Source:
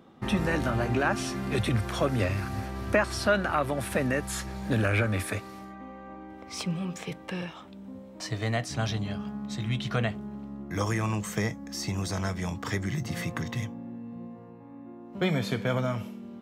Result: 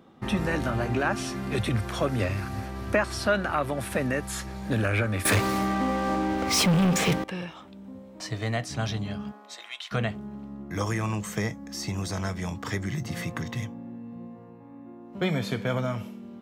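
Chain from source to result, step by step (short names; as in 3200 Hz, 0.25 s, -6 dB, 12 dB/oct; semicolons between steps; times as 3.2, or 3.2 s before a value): 5.25–7.24 sample leveller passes 5; 9.31–9.91 HPF 320 Hz -> 1000 Hz 24 dB/oct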